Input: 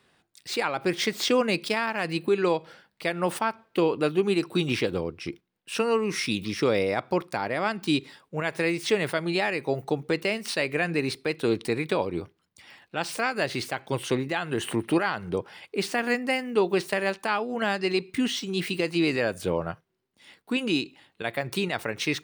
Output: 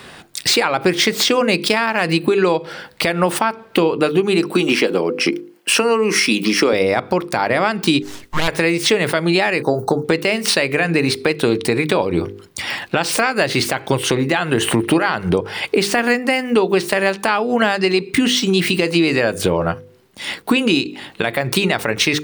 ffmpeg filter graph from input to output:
-filter_complex "[0:a]asettb=1/sr,asplit=3[s0][s1][s2];[s0]atrim=end=4.514[s3];[s1]atrim=start=4.51:end=6.73,asetpts=PTS-STARTPTS,afade=t=in:d=0.004:c=qsin,afade=t=out:st=2.216:d=0.004:c=qsin,highpass=f=210:w=0.5412,highpass=f=210:w=1.3066,bandreject=f=3700:w=7.6[s4];[s2]atrim=start=6.726[s5];[s3][s4]acrossfade=d=0.004:c1=hsin:c2=qsin[s6];[s6][s5]acrossfade=d=0.004:c1=qsin:c2=hsin,asettb=1/sr,asplit=3[s7][s8][s9];[s7]atrim=end=8.024[s10];[s8]atrim=start=8.02:end=8.48,asetpts=PTS-STARTPTS,afade=t=in:d=0.004:c=qsin,afade=t=out:st=0.456:d=0.004:c=qsin,highpass=780,aeval=exprs='abs(val(0))':c=same[s11];[s9]atrim=start=8.476[s12];[s10][s11]acrossfade=d=0.004:c1=hsin:c2=qsin[s13];[s13][s12]acrossfade=d=0.004:c1=qsin:c2=hsin,asettb=1/sr,asplit=3[s14][s15][s16];[s14]atrim=end=9.624[s17];[s15]atrim=start=9.62:end=10.05,asetpts=PTS-STARTPTS,afade=t=in:d=0.004:c=qsin,afade=t=out:st=0.426:d=0.004:c=qsin,asuperstop=centerf=2500:order=8:qfactor=1,asplit=2[s18][s19];[s19]adelay=18,volume=0.266[s20];[s18][s20]amix=inputs=2:normalize=0,atrim=end_sample=18963[s21];[s16]atrim=start=10.046[s22];[s17][s21]acrossfade=d=0.004:c1=hsin:c2=qsin[s23];[s23][s22]acrossfade=d=0.004:c1=qsin:c2=hsin,bandreject=f=50:t=h:w=6,bandreject=f=100:t=h:w=6,bandreject=f=150:t=h:w=6,bandreject=f=200:t=h:w=6,bandreject=f=250:t=h:w=6,bandreject=f=300:t=h:w=6,bandreject=f=350:t=h:w=6,bandreject=f=400:t=h:w=6,bandreject=f=450:t=h:w=6,bandreject=f=500:t=h:w=6,acompressor=threshold=0.01:ratio=6,alimiter=level_in=26.6:limit=0.891:release=50:level=0:latency=1,volume=0.75"

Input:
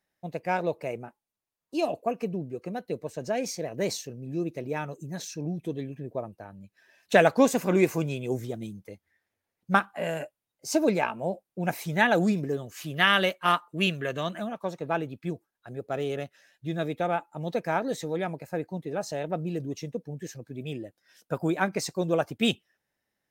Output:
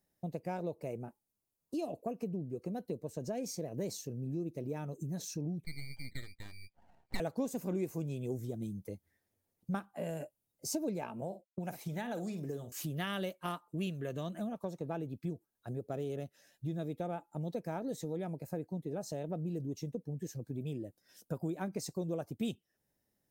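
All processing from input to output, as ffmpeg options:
-filter_complex "[0:a]asettb=1/sr,asplit=3[s0][s1][s2];[s0]atrim=end=5.644[s3];[s1]atrim=start=5.64:end=7.2,asetpts=PTS-STARTPTS,afade=t=in:d=0.004:c=qsin,afade=t=out:st=1.556:d=0.004:c=qsin,lowpass=f=2100:t=q:w=0.5098,lowpass=f=2100:t=q:w=0.6013,lowpass=f=2100:t=q:w=0.9,lowpass=f=2100:t=q:w=2.563,afreqshift=-2500,aeval=exprs='max(val(0),0)':c=same[s4];[s2]atrim=start=7.196[s5];[s3][s4]acrossfade=d=0.004:c1=hsin:c2=qsin[s6];[s6][s5]acrossfade=d=0.004:c1=qsin:c2=hsin,asettb=1/sr,asplit=3[s7][s8][s9];[s7]atrim=end=11.214[s10];[s8]atrim=start=11.21:end=12.72,asetpts=PTS-STARTPTS,afade=t=in:d=0.004:c=qsin,afade=t=out:st=1.506:d=0.004:c=qsin,agate=range=0.0224:threshold=0.0141:ratio=3:release=100:detection=peak,asplit=2[s11][s12];[s12]adelay=50,volume=0.237[s13];[s11][s13]amix=inputs=2:normalize=0,atrim=end_sample=66591,acrossover=split=610|4700[s14][s15][s16];[s14]acompressor=threshold=0.0141:ratio=4[s17];[s15]acompressor=threshold=0.0398:ratio=4[s18];[s16]acompressor=threshold=0.00251:ratio=4[s19];[s17][s18][s19]amix=inputs=3:normalize=0[s20];[s9]atrim=start=12.716[s21];[s10][s20]acrossfade=d=0.004:c1=hsin:c2=qsin[s22];[s22][s21]acrossfade=d=0.004:c1=qsin:c2=hsin,equalizer=f=1900:w=0.39:g=-14.5,acompressor=threshold=0.00631:ratio=3,volume=2"

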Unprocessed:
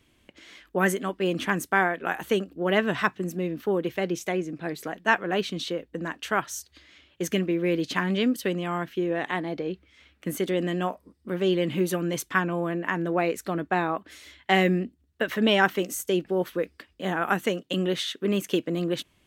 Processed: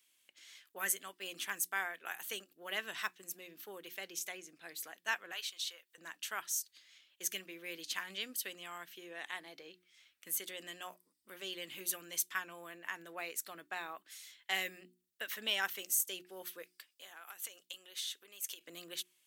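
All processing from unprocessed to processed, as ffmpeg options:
-filter_complex "[0:a]asettb=1/sr,asplit=3[s0][s1][s2];[s0]atrim=end=5.324[s3];[s1]atrim=start=5.32:end=5.98,asetpts=PTS-STARTPTS,afade=t=in:d=0.004:c=qsin,afade=t=out:st=0.656:d=0.004:c=qsin,highpass=850,acompressor=mode=upward:threshold=0.00282:ratio=2.5:attack=3.2:release=140:knee=2.83:detection=peak[s4];[s2]atrim=start=5.976[s5];[s3][s4]acrossfade=d=0.004:c1=hsin:c2=qsin[s6];[s6][s5]acrossfade=d=0.004:c1=qsin:c2=hsin,asettb=1/sr,asplit=3[s7][s8][s9];[s7]atrim=end=16.624[s10];[s8]atrim=start=16.62:end=18.61,asetpts=PTS-STARTPTS,afade=t=in:d=0.004:c=qsin,afade=t=out:st=1.986:d=0.004:c=qsin,bandreject=f=1900:w=29,acompressor=threshold=0.0282:ratio=10:attack=3.2:release=140:knee=1:detection=peak,bass=f=250:g=-15,treble=f=4000:g=2[s11];[s9]atrim=start=18.606[s12];[s10][s11]acrossfade=d=0.004:c1=hsin:c2=qsin[s13];[s13][s12]acrossfade=d=0.004:c1=qsin:c2=hsin,aderivative,bandreject=f=60:t=h:w=6,bandreject=f=120:t=h:w=6,bandreject=f=180:t=h:w=6,bandreject=f=240:t=h:w=6,bandreject=f=300:t=h:w=6,bandreject=f=360:t=h:w=6"

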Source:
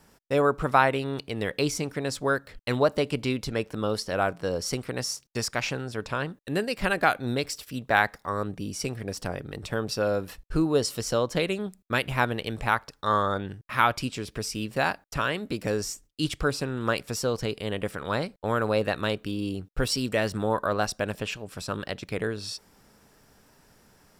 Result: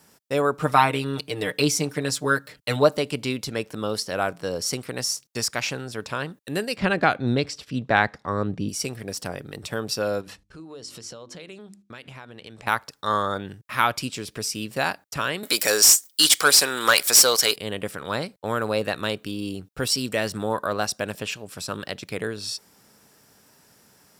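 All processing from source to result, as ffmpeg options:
-filter_complex "[0:a]asettb=1/sr,asplit=3[s0][s1][s2];[s0]atrim=end=0.594[s3];[s1]atrim=start=0.59:end=2.97,asetpts=PTS-STARTPTS,afade=t=in:d=0.004:c=qsin,afade=t=out:st=2.376:d=0.004:c=qsin,highpass=57,aecho=1:1:6.6:0.84,atrim=end_sample=104958[s4];[s2]atrim=start=2.966[s5];[s3][s4]acrossfade=d=0.004:c1=hsin:c2=qsin[s6];[s6][s5]acrossfade=d=0.004:c1=qsin:c2=hsin,asettb=1/sr,asplit=3[s7][s8][s9];[s7]atrim=end=6.764[s10];[s8]atrim=start=6.76:end=8.69,asetpts=PTS-STARTPTS,afade=t=in:d=0.004:c=qsin,afade=t=out:st=1.926:d=0.004:c=qsin,lowpass=4600,lowshelf=f=390:g=9[s11];[s9]atrim=start=8.686[s12];[s10][s11]acrossfade=d=0.004:c1=hsin:c2=qsin[s13];[s13][s12]acrossfade=d=0.004:c1=qsin:c2=hsin,asettb=1/sr,asplit=3[s14][s15][s16];[s14]atrim=end=10.214[s17];[s15]atrim=start=10.21:end=12.67,asetpts=PTS-STARTPTS,afade=t=in:d=0.004:c=qsin,afade=t=out:st=2.456:d=0.004:c=qsin,lowpass=7100,bandreject=f=50:t=h:w=6,bandreject=f=100:t=h:w=6,bandreject=f=150:t=h:w=6,bandreject=f=200:t=h:w=6,bandreject=f=250:t=h:w=6,bandreject=f=300:t=h:w=6,bandreject=f=350:t=h:w=6,acompressor=threshold=0.0126:ratio=8:attack=3.2:release=140:knee=1:detection=peak[s18];[s16]atrim=start=12.666[s19];[s17][s18]acrossfade=d=0.004:c1=hsin:c2=qsin[s20];[s20][s19]acrossfade=d=0.004:c1=qsin:c2=hsin,asettb=1/sr,asplit=3[s21][s22][s23];[s21]atrim=end=15.434[s24];[s22]atrim=start=15.43:end=17.56,asetpts=PTS-STARTPTS,afade=t=in:d=0.004:c=qsin,afade=t=out:st=2.126:d=0.004:c=qsin,aemphasis=mode=production:type=riaa,bandreject=f=2700:w=11,asplit=2[s25][s26];[s26]highpass=f=720:p=1,volume=7.94,asoftclip=type=tanh:threshold=0.562[s27];[s25][s27]amix=inputs=2:normalize=0,lowpass=f=4400:p=1,volume=0.501[s28];[s23]atrim=start=17.556[s29];[s24][s28]acrossfade=d=0.004:c1=hsin:c2=qsin[s30];[s30][s29]acrossfade=d=0.004:c1=qsin:c2=hsin,highpass=96,highshelf=f=3700:g=7.5"

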